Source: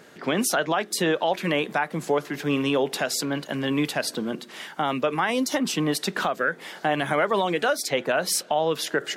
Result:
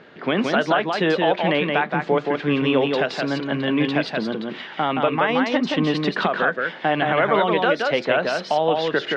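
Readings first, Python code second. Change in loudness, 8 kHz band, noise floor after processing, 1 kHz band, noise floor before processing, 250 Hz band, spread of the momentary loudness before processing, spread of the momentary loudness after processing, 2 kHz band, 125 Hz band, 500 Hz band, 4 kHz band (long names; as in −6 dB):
+4.0 dB, below −15 dB, −37 dBFS, +4.5 dB, −47 dBFS, +4.5 dB, 5 LU, 5 LU, +4.5 dB, +4.5 dB, +4.5 dB, +2.0 dB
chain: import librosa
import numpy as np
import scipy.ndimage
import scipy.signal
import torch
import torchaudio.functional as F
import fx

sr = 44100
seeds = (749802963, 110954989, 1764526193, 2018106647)

y = scipy.signal.sosfilt(scipy.signal.butter(4, 3800.0, 'lowpass', fs=sr, output='sos'), x)
y = y + 10.0 ** (-3.5 / 20.0) * np.pad(y, (int(173 * sr / 1000.0), 0))[:len(y)]
y = y * 10.0 ** (3.0 / 20.0)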